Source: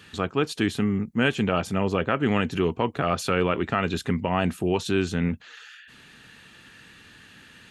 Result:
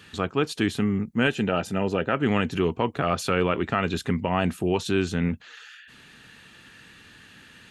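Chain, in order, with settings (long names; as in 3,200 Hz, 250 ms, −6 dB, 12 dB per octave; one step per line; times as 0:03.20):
0:01.27–0:02.13: notch comb filter 1,100 Hz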